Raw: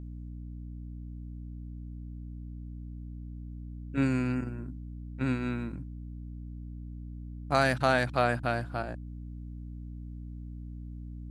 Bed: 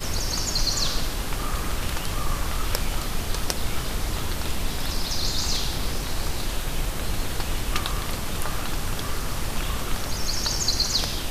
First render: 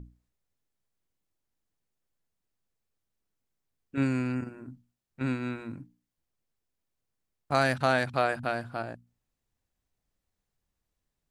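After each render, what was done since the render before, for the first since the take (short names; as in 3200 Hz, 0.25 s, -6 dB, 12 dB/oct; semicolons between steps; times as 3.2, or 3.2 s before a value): notches 60/120/180/240/300 Hz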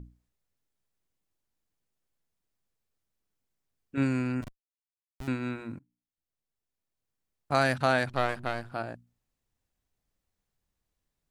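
4.42–5.28 Schmitt trigger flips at -31.5 dBFS; 5.79–7.52 fade in, from -22.5 dB; 8.09–8.72 half-wave gain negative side -12 dB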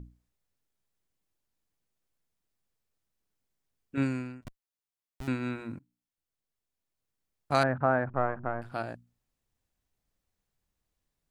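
3.95–4.45 fade out; 7.63–8.62 LPF 1500 Hz 24 dB/oct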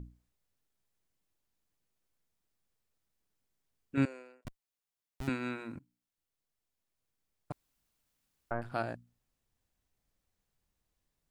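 4.05–4.45 ladder high-pass 440 Hz, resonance 60%; 5.29–5.76 HPF 330 Hz 6 dB/oct; 7.52–8.51 room tone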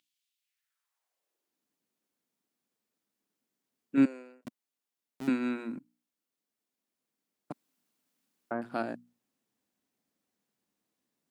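high-pass sweep 3100 Hz -> 240 Hz, 0.36–1.63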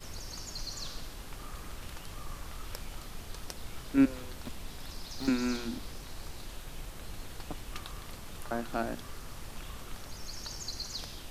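add bed -16 dB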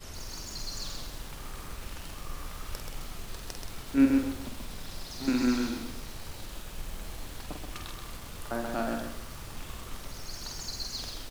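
doubler 48 ms -5.5 dB; lo-fi delay 0.13 s, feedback 35%, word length 8-bit, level -3.5 dB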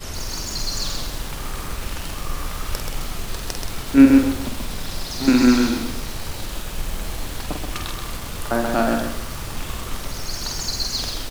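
gain +12 dB; limiter -1 dBFS, peak gain reduction 1.5 dB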